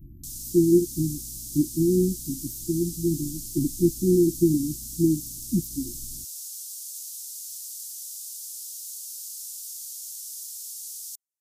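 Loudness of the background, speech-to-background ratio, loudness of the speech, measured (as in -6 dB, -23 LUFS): -35.0 LUFS, 10.0 dB, -25.0 LUFS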